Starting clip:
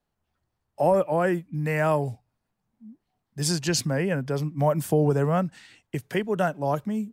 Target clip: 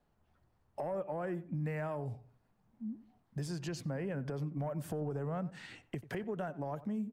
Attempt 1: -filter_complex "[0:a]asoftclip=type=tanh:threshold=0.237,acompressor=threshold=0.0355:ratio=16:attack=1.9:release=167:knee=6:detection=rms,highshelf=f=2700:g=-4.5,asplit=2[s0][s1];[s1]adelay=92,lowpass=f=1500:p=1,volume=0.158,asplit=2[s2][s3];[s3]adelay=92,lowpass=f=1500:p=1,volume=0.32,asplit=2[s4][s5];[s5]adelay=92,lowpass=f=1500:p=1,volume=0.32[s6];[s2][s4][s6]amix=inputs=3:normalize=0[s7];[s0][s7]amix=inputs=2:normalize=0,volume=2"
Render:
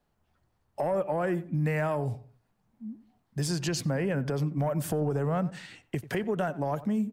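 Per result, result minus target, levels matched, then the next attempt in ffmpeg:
compression: peak gain reduction -9 dB; 4 kHz band +3.0 dB
-filter_complex "[0:a]asoftclip=type=tanh:threshold=0.237,acompressor=threshold=0.0119:ratio=16:attack=1.9:release=167:knee=6:detection=rms,highshelf=f=2700:g=-4.5,asplit=2[s0][s1];[s1]adelay=92,lowpass=f=1500:p=1,volume=0.158,asplit=2[s2][s3];[s3]adelay=92,lowpass=f=1500:p=1,volume=0.32,asplit=2[s4][s5];[s5]adelay=92,lowpass=f=1500:p=1,volume=0.32[s6];[s2][s4][s6]amix=inputs=3:normalize=0[s7];[s0][s7]amix=inputs=2:normalize=0,volume=2"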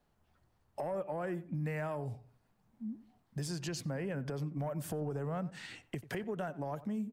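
4 kHz band +4.0 dB
-filter_complex "[0:a]asoftclip=type=tanh:threshold=0.237,acompressor=threshold=0.0119:ratio=16:attack=1.9:release=167:knee=6:detection=rms,highshelf=f=2700:g=-11,asplit=2[s0][s1];[s1]adelay=92,lowpass=f=1500:p=1,volume=0.158,asplit=2[s2][s3];[s3]adelay=92,lowpass=f=1500:p=1,volume=0.32,asplit=2[s4][s5];[s5]adelay=92,lowpass=f=1500:p=1,volume=0.32[s6];[s2][s4][s6]amix=inputs=3:normalize=0[s7];[s0][s7]amix=inputs=2:normalize=0,volume=2"

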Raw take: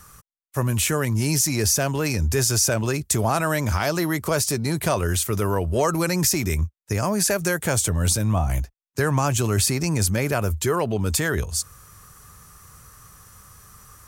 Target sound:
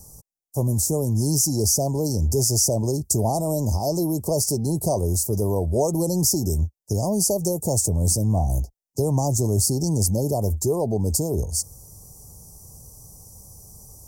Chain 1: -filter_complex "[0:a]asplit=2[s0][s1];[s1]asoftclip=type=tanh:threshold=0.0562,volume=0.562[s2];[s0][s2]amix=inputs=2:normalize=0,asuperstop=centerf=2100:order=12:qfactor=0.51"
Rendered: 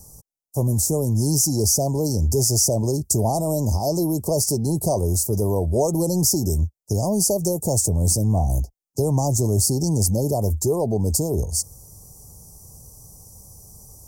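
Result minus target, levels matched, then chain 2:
saturation: distortion -5 dB
-filter_complex "[0:a]asplit=2[s0][s1];[s1]asoftclip=type=tanh:threshold=0.0158,volume=0.562[s2];[s0][s2]amix=inputs=2:normalize=0,asuperstop=centerf=2100:order=12:qfactor=0.51"

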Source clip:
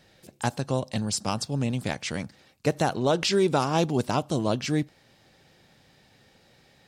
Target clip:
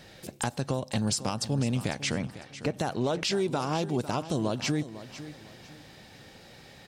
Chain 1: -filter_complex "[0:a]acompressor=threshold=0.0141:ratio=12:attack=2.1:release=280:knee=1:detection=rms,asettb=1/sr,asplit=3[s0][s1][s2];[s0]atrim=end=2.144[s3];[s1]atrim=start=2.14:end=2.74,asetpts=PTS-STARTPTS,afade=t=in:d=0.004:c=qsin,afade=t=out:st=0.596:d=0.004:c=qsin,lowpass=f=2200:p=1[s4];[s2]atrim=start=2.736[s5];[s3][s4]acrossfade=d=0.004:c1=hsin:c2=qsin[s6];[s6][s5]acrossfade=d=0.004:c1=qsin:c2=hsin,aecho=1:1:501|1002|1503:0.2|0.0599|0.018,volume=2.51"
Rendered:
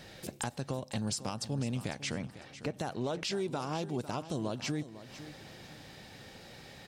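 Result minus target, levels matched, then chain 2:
compression: peak gain reduction +6.5 dB
-filter_complex "[0:a]acompressor=threshold=0.0316:ratio=12:attack=2.1:release=280:knee=1:detection=rms,asettb=1/sr,asplit=3[s0][s1][s2];[s0]atrim=end=2.144[s3];[s1]atrim=start=2.14:end=2.74,asetpts=PTS-STARTPTS,afade=t=in:d=0.004:c=qsin,afade=t=out:st=0.596:d=0.004:c=qsin,lowpass=f=2200:p=1[s4];[s2]atrim=start=2.736[s5];[s3][s4]acrossfade=d=0.004:c1=hsin:c2=qsin[s6];[s6][s5]acrossfade=d=0.004:c1=qsin:c2=hsin,aecho=1:1:501|1002|1503:0.2|0.0599|0.018,volume=2.51"

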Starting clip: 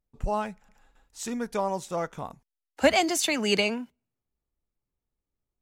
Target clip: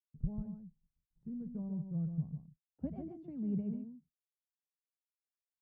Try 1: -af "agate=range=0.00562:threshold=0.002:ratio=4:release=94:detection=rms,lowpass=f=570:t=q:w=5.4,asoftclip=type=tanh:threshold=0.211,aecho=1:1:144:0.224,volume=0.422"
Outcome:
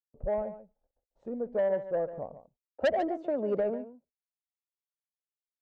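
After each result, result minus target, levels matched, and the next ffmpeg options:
125 Hz band -19.0 dB; echo-to-direct -6 dB
-af "agate=range=0.00562:threshold=0.002:ratio=4:release=94:detection=rms,lowpass=f=160:t=q:w=5.4,asoftclip=type=tanh:threshold=0.211,aecho=1:1:144:0.224,volume=0.422"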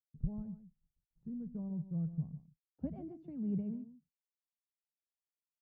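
echo-to-direct -6 dB
-af "agate=range=0.00562:threshold=0.002:ratio=4:release=94:detection=rms,lowpass=f=160:t=q:w=5.4,asoftclip=type=tanh:threshold=0.211,aecho=1:1:144:0.447,volume=0.422"

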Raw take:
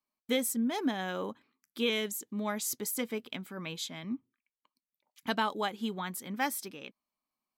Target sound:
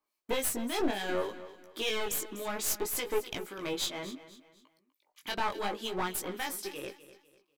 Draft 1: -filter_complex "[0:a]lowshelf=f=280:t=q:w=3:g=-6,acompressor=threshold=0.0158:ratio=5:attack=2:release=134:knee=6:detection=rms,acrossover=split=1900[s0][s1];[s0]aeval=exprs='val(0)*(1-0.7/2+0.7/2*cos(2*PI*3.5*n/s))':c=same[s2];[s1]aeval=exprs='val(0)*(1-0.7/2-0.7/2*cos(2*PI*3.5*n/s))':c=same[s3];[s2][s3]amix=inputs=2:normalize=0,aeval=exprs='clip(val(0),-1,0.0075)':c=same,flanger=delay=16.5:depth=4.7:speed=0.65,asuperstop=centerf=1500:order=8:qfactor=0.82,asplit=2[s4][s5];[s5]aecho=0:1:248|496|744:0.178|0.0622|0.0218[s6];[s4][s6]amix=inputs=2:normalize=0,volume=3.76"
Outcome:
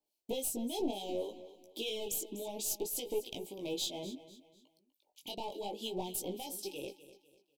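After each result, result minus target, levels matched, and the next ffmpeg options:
2 kHz band -11.5 dB; compression: peak gain reduction +7 dB
-filter_complex "[0:a]lowshelf=f=280:t=q:w=3:g=-6,acompressor=threshold=0.0158:ratio=5:attack=2:release=134:knee=6:detection=rms,acrossover=split=1900[s0][s1];[s0]aeval=exprs='val(0)*(1-0.7/2+0.7/2*cos(2*PI*3.5*n/s))':c=same[s2];[s1]aeval=exprs='val(0)*(1-0.7/2-0.7/2*cos(2*PI*3.5*n/s))':c=same[s3];[s2][s3]amix=inputs=2:normalize=0,aeval=exprs='clip(val(0),-1,0.0075)':c=same,flanger=delay=16.5:depth=4.7:speed=0.65,asplit=2[s4][s5];[s5]aecho=0:1:248|496|744:0.178|0.0622|0.0218[s6];[s4][s6]amix=inputs=2:normalize=0,volume=3.76"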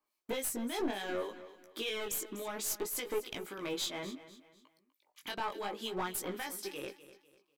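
compression: peak gain reduction +7 dB
-filter_complex "[0:a]lowshelf=f=280:t=q:w=3:g=-6,acompressor=threshold=0.0422:ratio=5:attack=2:release=134:knee=6:detection=rms,acrossover=split=1900[s0][s1];[s0]aeval=exprs='val(0)*(1-0.7/2+0.7/2*cos(2*PI*3.5*n/s))':c=same[s2];[s1]aeval=exprs='val(0)*(1-0.7/2-0.7/2*cos(2*PI*3.5*n/s))':c=same[s3];[s2][s3]amix=inputs=2:normalize=0,aeval=exprs='clip(val(0),-1,0.0075)':c=same,flanger=delay=16.5:depth=4.7:speed=0.65,asplit=2[s4][s5];[s5]aecho=0:1:248|496|744:0.178|0.0622|0.0218[s6];[s4][s6]amix=inputs=2:normalize=0,volume=3.76"

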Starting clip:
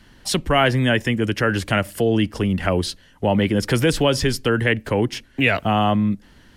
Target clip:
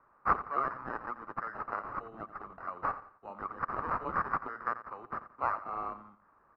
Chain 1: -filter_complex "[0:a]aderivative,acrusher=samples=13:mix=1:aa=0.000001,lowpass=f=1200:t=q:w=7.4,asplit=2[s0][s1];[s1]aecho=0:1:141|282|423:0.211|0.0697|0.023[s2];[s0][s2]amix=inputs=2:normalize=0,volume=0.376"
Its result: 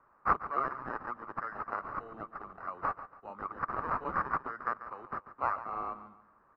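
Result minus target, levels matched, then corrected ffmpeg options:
echo 54 ms late
-filter_complex "[0:a]aderivative,acrusher=samples=13:mix=1:aa=0.000001,lowpass=f=1200:t=q:w=7.4,asplit=2[s0][s1];[s1]aecho=0:1:87|174|261:0.211|0.0697|0.023[s2];[s0][s2]amix=inputs=2:normalize=0,volume=0.376"

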